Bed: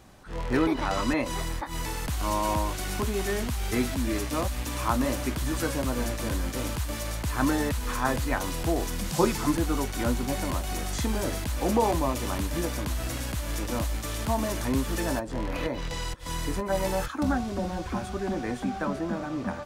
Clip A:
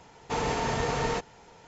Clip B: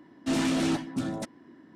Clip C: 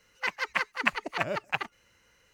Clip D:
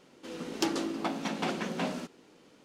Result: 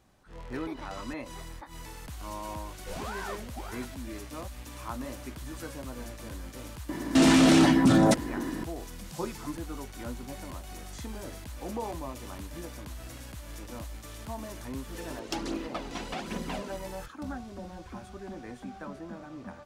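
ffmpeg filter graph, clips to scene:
-filter_complex "[2:a]asplit=2[s0][s1];[0:a]volume=0.266[s2];[s0]aeval=exprs='val(0)*sin(2*PI*770*n/s+770*0.7/1.7*sin(2*PI*1.7*n/s))':c=same[s3];[s1]alimiter=level_in=33.5:limit=0.891:release=50:level=0:latency=1[s4];[4:a]aphaser=in_gain=1:out_gain=1:delay=3:decay=0.5:speed=1.2:type=triangular[s5];[s3]atrim=end=1.75,asetpts=PTS-STARTPTS,volume=0.335,afade=t=in:d=0.004:c=hsin,afade=t=out:st=1.746:d=0.004:c=hsin,adelay=2600[s6];[s4]atrim=end=1.75,asetpts=PTS-STARTPTS,volume=0.251,afade=t=in:d=0.004:c=hsin,afade=t=out:st=1.746:d=0.004:c=hsin,adelay=6890[s7];[s5]atrim=end=2.64,asetpts=PTS-STARTPTS,volume=0.596,afade=t=in:d=0.004:c=hsin,afade=t=out:st=2.636:d=0.004:c=hsin,adelay=14700[s8];[s2][s6][s7][s8]amix=inputs=4:normalize=0"

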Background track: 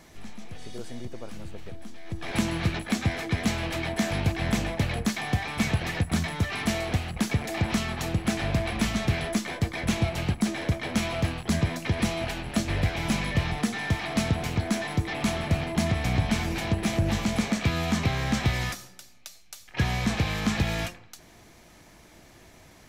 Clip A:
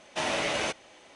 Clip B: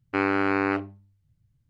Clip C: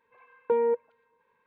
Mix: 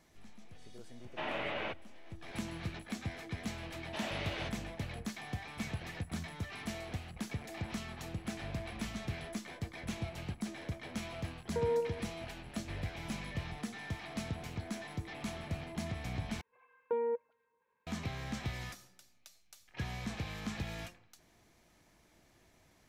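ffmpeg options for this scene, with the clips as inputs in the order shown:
-filter_complex "[1:a]asplit=2[s0][s1];[3:a]asplit=2[s2][s3];[0:a]volume=0.2[s4];[s0]lowpass=f=3100:w=0.5412,lowpass=f=3100:w=1.3066[s5];[s1]highshelf=f=5500:t=q:w=1.5:g=-11[s6];[s2]aecho=1:1:62|124|186|248|310|372|434:0.473|0.251|0.133|0.0704|0.0373|0.0198|0.0105[s7];[s4]asplit=2[s8][s9];[s8]atrim=end=16.414[s10];[s3]atrim=end=1.46,asetpts=PTS-STARTPTS,volume=0.355[s11];[s9]atrim=start=17.866[s12];[s5]atrim=end=1.15,asetpts=PTS-STARTPTS,volume=0.398,afade=t=in:d=0.004:c=hsin,afade=t=out:st=1.146:d=0.004:c=hsin,adelay=1010[s13];[s6]atrim=end=1.15,asetpts=PTS-STARTPTS,volume=0.237,afade=t=in:d=0.004:c=hsin,afade=t=out:st=1.146:d=0.004:c=hsin,adelay=166257S[s14];[s7]atrim=end=1.46,asetpts=PTS-STARTPTS,volume=0.266,afade=t=in:d=0.004:c=hsin,afade=t=out:st=1.456:d=0.004:c=hsin,adelay=487746S[s15];[s10][s11]acrossfade=d=0.004:c1=hsin:c2=hsin[s16];[s16][s12]acrossfade=d=0.004:c1=hsin:c2=hsin[s17];[s17][s13][s14][s15]amix=inputs=4:normalize=0"

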